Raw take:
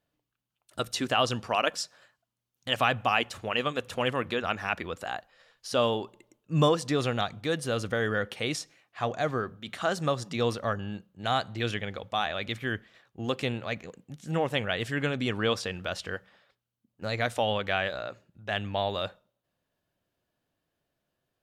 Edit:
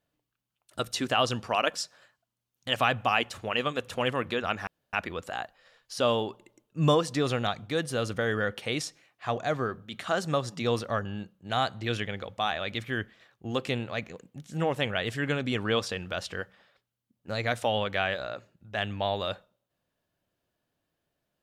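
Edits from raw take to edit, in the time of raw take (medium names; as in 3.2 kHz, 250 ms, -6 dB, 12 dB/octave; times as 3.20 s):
4.67 s: insert room tone 0.26 s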